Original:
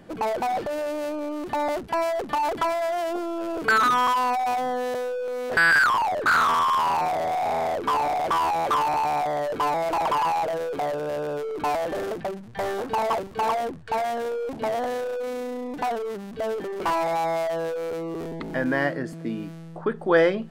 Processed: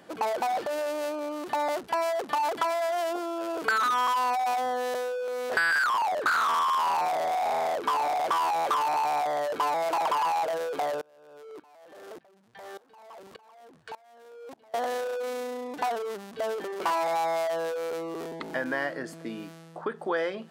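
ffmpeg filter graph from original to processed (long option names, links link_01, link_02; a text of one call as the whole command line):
ffmpeg -i in.wav -filter_complex "[0:a]asettb=1/sr,asplit=3[link_01][link_02][link_03];[link_01]atrim=end=11.014[link_04];[link_02]atrim=start=11.01:end=14.74,asetpts=PTS-STARTPTS,afade=type=in:duration=0.004:curve=qsin,afade=type=out:start_time=3.726:duration=0.004:curve=qsin,acompressor=threshold=-34dB:ratio=10:attack=3.2:release=140:knee=1:detection=peak,aeval=exprs='val(0)*pow(10,-23*if(lt(mod(-1.7*n/s,1),2*abs(-1.7)/1000),1-mod(-1.7*n/s,1)/(2*abs(-1.7)/1000),(mod(-1.7*n/s,1)-2*abs(-1.7)/1000)/(1-2*abs(-1.7)/1000))/20)':channel_layout=same[link_05];[link_03]atrim=start=14.736[link_06];[link_04][link_05]acrossfade=duration=0.004:curve1=hsin:curve2=qsin[link_07];[link_07][link_06]acrossfade=duration=0.004:curve1=qsin:curve2=hsin,acompressor=threshold=-23dB:ratio=6,highpass=frequency=720:poles=1,equalizer=frequency=2200:width=1.5:gain=-2.5,volume=2.5dB" out.wav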